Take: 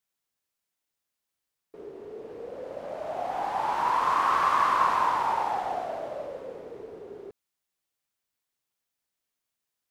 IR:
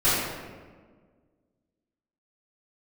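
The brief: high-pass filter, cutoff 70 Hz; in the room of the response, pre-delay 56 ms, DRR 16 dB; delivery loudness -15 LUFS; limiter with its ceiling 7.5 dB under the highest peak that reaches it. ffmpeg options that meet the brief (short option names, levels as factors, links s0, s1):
-filter_complex "[0:a]highpass=70,alimiter=limit=0.119:level=0:latency=1,asplit=2[s0][s1];[1:a]atrim=start_sample=2205,adelay=56[s2];[s1][s2]afir=irnorm=-1:irlink=0,volume=0.0224[s3];[s0][s3]amix=inputs=2:normalize=0,volume=5.62"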